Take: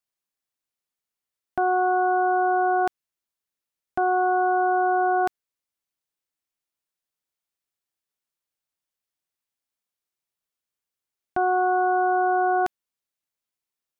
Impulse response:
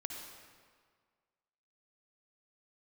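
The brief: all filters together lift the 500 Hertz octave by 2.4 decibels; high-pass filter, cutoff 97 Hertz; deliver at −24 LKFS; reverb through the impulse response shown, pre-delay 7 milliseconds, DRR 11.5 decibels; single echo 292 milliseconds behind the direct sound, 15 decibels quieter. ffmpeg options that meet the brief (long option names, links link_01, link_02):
-filter_complex "[0:a]highpass=97,equalizer=frequency=500:width_type=o:gain=4.5,aecho=1:1:292:0.178,asplit=2[link_01][link_02];[1:a]atrim=start_sample=2205,adelay=7[link_03];[link_02][link_03]afir=irnorm=-1:irlink=0,volume=-11dB[link_04];[link_01][link_04]amix=inputs=2:normalize=0,volume=-3dB"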